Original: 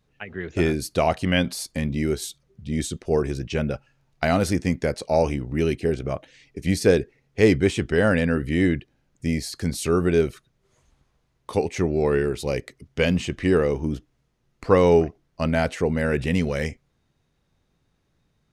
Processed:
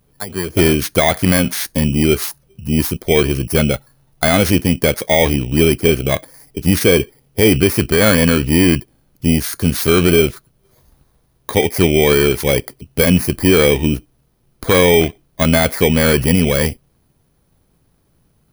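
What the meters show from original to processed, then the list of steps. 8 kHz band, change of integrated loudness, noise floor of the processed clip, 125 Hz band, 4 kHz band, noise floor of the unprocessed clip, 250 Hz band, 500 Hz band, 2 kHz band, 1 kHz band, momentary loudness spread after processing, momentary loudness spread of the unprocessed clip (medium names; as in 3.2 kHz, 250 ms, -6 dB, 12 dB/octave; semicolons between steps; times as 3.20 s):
+13.5 dB, +8.5 dB, -60 dBFS, +8.5 dB, +14.0 dB, -70 dBFS, +8.5 dB, +7.0 dB, +9.5 dB, +6.5 dB, 9 LU, 11 LU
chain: bit-reversed sample order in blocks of 16 samples; dynamic bell 2 kHz, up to +7 dB, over -41 dBFS, Q 1.1; loudness maximiser +11 dB; trim -1 dB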